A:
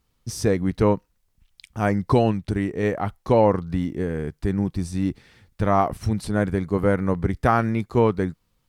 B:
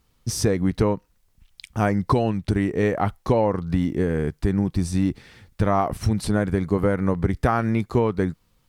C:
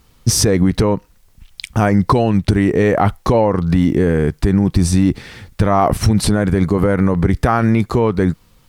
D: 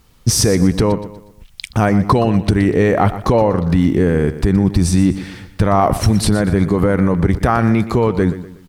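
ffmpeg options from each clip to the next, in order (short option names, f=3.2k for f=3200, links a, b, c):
-af "acompressor=threshold=-21dB:ratio=6,volume=5dB"
-af "alimiter=level_in=15.5dB:limit=-1dB:release=50:level=0:latency=1,volume=-3dB"
-af "aecho=1:1:121|242|363|484:0.211|0.0824|0.0321|0.0125"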